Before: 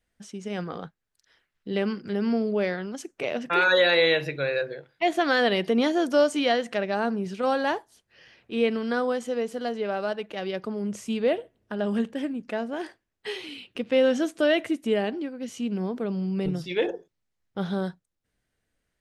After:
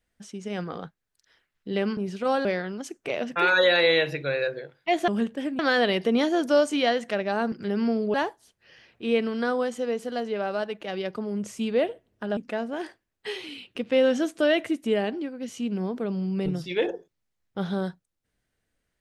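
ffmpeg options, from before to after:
-filter_complex "[0:a]asplit=8[a][b][c][d][e][f][g][h];[a]atrim=end=1.972[i];[b]atrim=start=7.148:end=7.632[j];[c]atrim=start=2.588:end=5.222[k];[d]atrim=start=11.858:end=12.372[l];[e]atrim=start=5.218:end=7.152[m];[f]atrim=start=1.968:end=2.592[n];[g]atrim=start=7.628:end=11.862[o];[h]atrim=start=12.368[p];[i][j]acrossfade=d=0.004:c1=hsin:c2=hsin[q];[q][k]acrossfade=d=0.004:c1=hsin:c2=hsin[r];[r][l]acrossfade=d=0.004:c1=hsin:c2=hsin[s];[s][m]acrossfade=d=0.004:c1=hsin:c2=hsin[t];[t][n]acrossfade=d=0.004:c1=hsin:c2=hsin[u];[u][o]acrossfade=d=0.004:c1=hsin:c2=hsin[v];[v][p]acrossfade=d=0.004:c1=hsin:c2=hsin"

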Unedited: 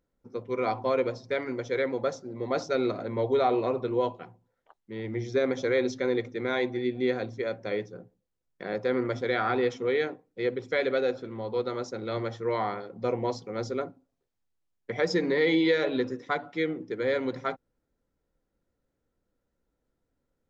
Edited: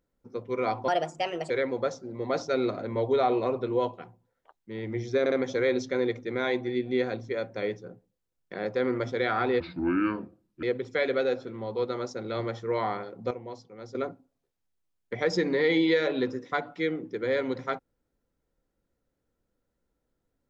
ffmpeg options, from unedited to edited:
-filter_complex "[0:a]asplit=9[a][b][c][d][e][f][g][h][i];[a]atrim=end=0.884[j];[b]atrim=start=0.88:end=1.71,asetpts=PTS-STARTPTS,asetrate=59094,aresample=44100[k];[c]atrim=start=1.706:end=5.472[l];[d]atrim=start=5.408:end=5.472[m];[e]atrim=start=5.408:end=9.694[n];[f]atrim=start=9.69:end=10.4,asetpts=PTS-STARTPTS,asetrate=30429,aresample=44100,atrim=end_sample=45378,asetpts=PTS-STARTPTS[o];[g]atrim=start=10.396:end=13.082[p];[h]atrim=start=13.078:end=13.722,asetpts=PTS-STARTPTS,volume=-11dB[q];[i]atrim=start=13.718[r];[j][k]acrossfade=d=0.004:c1=hsin:c2=hsin[s];[s][l]acrossfade=d=0.004:c1=hsin:c2=hsin[t];[t][m]acrossfade=d=0.004:c1=hsin:c2=hsin[u];[u][n]acrossfade=d=0.004:c1=hsin:c2=hsin[v];[v][o]acrossfade=d=0.004:c1=hsin:c2=hsin[w];[w][p]acrossfade=d=0.004:c1=hsin:c2=hsin[x];[x][q]acrossfade=d=0.004:c1=hsin:c2=hsin[y];[y][r]acrossfade=d=0.004:c1=hsin:c2=hsin"

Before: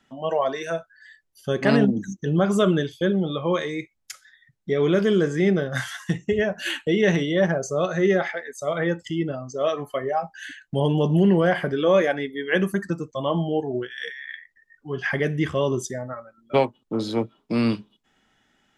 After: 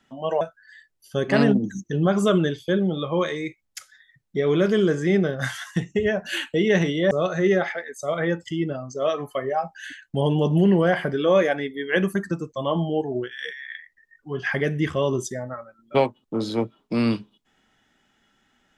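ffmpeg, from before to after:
-filter_complex "[0:a]asplit=3[a][b][c];[a]atrim=end=0.412[d];[b]atrim=start=0.738:end=7.442[e];[c]atrim=start=7.698[f];[d][e]acrossfade=d=0.004:c1=hsin:c2=hsin[g];[g][f]acrossfade=d=0.004:c1=hsin:c2=hsin"

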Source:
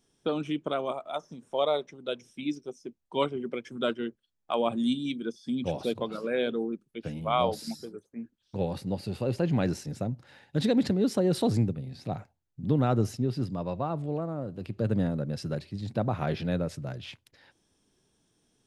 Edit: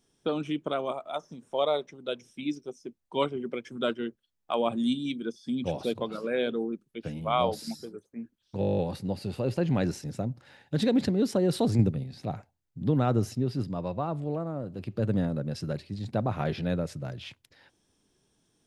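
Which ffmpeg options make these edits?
-filter_complex "[0:a]asplit=12[a][b][c][d][e][f][g][h][i][j][k][l];[a]atrim=end=8.622[m];[b]atrim=start=8.598:end=8.622[n];[c]atrim=start=8.598:end=8.622[o];[d]atrim=start=8.598:end=8.622[p];[e]atrim=start=8.598:end=8.622[q];[f]atrim=start=8.598:end=8.622[r];[g]atrim=start=8.598:end=8.622[s];[h]atrim=start=8.598:end=8.622[t];[i]atrim=start=8.598:end=8.622[u];[j]atrim=start=8.598:end=11.612[v];[k]atrim=start=11.608:end=11.862,asetpts=PTS-STARTPTS,volume=4.5dB[w];[l]atrim=start=11.858[x];[m][n]acrossfade=d=0.004:c1=hsin:c2=hsin[y];[y][o]acrossfade=d=0.004:c1=hsin:c2=hsin[z];[z][p]acrossfade=d=0.004:c1=hsin:c2=hsin[aa];[aa][q]acrossfade=d=0.004:c1=hsin:c2=hsin[ab];[ab][r]acrossfade=d=0.004:c1=hsin:c2=hsin[ac];[ac][s]acrossfade=d=0.004:c1=hsin:c2=hsin[ad];[ad][t]acrossfade=d=0.004:c1=hsin:c2=hsin[ae];[ae][u]acrossfade=d=0.004:c1=hsin:c2=hsin[af];[af][v]acrossfade=d=0.004:c1=hsin:c2=hsin[ag];[ag][w]acrossfade=d=0.004:c1=hsin:c2=hsin[ah];[ah][x]acrossfade=d=0.004:c1=hsin:c2=hsin"

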